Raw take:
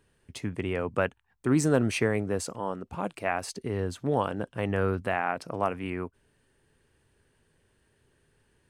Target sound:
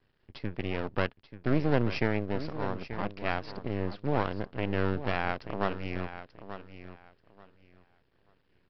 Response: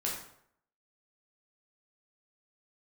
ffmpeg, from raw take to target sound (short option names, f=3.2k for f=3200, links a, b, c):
-af "aresample=11025,aeval=exprs='max(val(0),0)':c=same,aresample=44100,aecho=1:1:885|1770|2655:0.251|0.0527|0.0111"